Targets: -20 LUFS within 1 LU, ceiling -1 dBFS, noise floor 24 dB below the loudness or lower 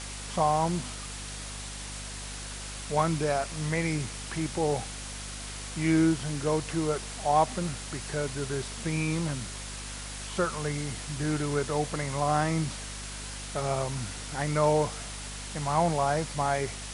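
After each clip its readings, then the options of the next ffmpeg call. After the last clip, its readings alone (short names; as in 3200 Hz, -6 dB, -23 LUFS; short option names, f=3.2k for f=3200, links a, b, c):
hum 50 Hz; harmonics up to 250 Hz; hum level -40 dBFS; noise floor -39 dBFS; noise floor target -54 dBFS; loudness -30.0 LUFS; peak -12.0 dBFS; loudness target -20.0 LUFS
-> -af "bandreject=f=50:t=h:w=6,bandreject=f=100:t=h:w=6,bandreject=f=150:t=h:w=6,bandreject=f=200:t=h:w=6,bandreject=f=250:t=h:w=6"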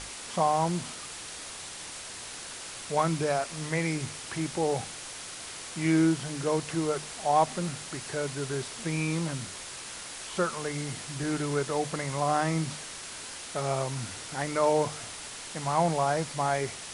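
hum none; noise floor -42 dBFS; noise floor target -55 dBFS
-> -af "afftdn=nr=13:nf=-42"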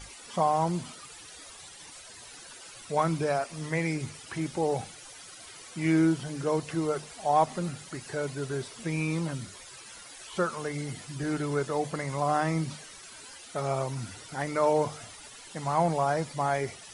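noise floor -48 dBFS; noise floor target -54 dBFS
-> -af "afftdn=nr=6:nf=-48"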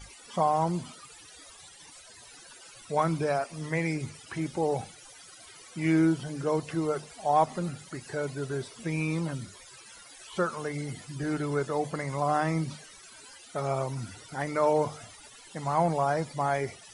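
noise floor -51 dBFS; noise floor target -54 dBFS
-> -af "afftdn=nr=6:nf=-51"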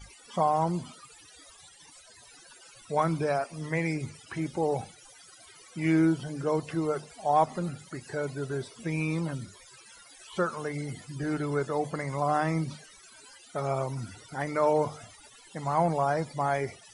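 noise floor -54 dBFS; loudness -30.0 LUFS; peak -12.0 dBFS; loudness target -20.0 LUFS
-> -af "volume=10dB"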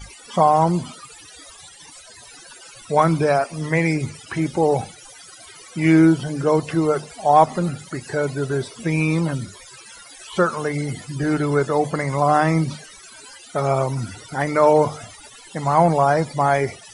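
loudness -20.0 LUFS; peak -2.0 dBFS; noise floor -44 dBFS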